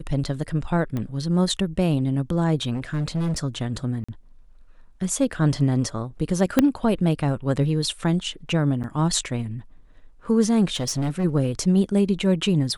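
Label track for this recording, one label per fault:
0.970000	0.970000	pop -17 dBFS
2.730000	3.390000	clipped -21 dBFS
4.040000	4.080000	gap 45 ms
6.590000	6.590000	pop -4 dBFS
8.830000	8.840000	gap 8.8 ms
10.740000	11.250000	clipped -20.5 dBFS

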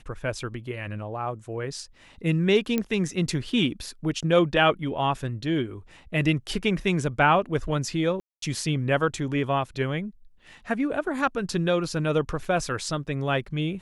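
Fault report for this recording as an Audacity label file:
2.780000	2.780000	pop -12 dBFS
8.200000	8.420000	gap 0.223 s
12.450000	12.450000	gap 2.8 ms

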